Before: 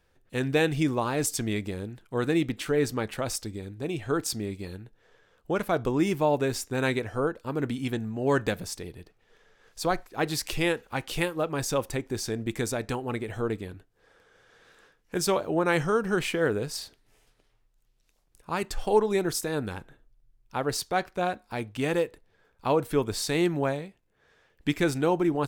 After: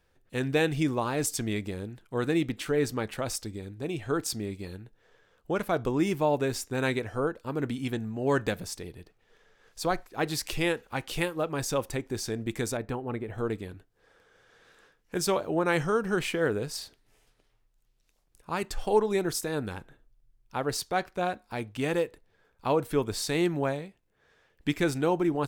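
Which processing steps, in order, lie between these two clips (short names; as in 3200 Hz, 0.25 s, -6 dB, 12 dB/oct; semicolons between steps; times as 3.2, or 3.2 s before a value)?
12.77–13.38 bell 7000 Hz -14 dB 2.5 oct; gain -1.5 dB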